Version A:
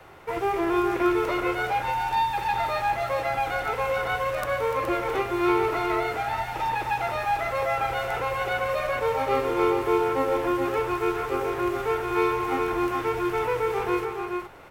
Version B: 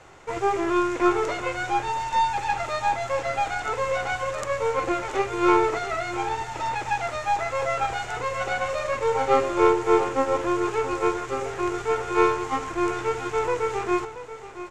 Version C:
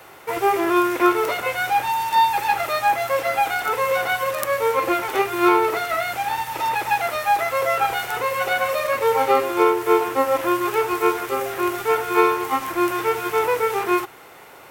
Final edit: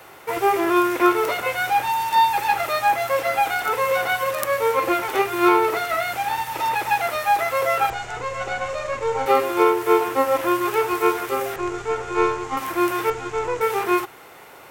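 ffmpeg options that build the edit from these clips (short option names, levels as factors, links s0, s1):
-filter_complex "[1:a]asplit=3[s0][s1][s2];[2:a]asplit=4[s3][s4][s5][s6];[s3]atrim=end=7.902[s7];[s0]atrim=start=7.898:end=9.262[s8];[s4]atrim=start=9.258:end=11.562[s9];[s1]atrim=start=11.558:end=12.572[s10];[s5]atrim=start=12.568:end=13.102[s11];[s2]atrim=start=13.098:end=13.612[s12];[s6]atrim=start=13.608[s13];[s7][s8]acrossfade=d=0.004:c1=hsin:c2=hsin[s14];[s14][s9]acrossfade=d=0.004:c1=hsin:c2=hsin[s15];[s15][s10]acrossfade=d=0.004:c1=hsin:c2=hsin[s16];[s16][s11]acrossfade=d=0.004:c1=hsin:c2=hsin[s17];[s17][s12]acrossfade=d=0.004:c1=hsin:c2=hsin[s18];[s18][s13]acrossfade=d=0.004:c1=hsin:c2=hsin"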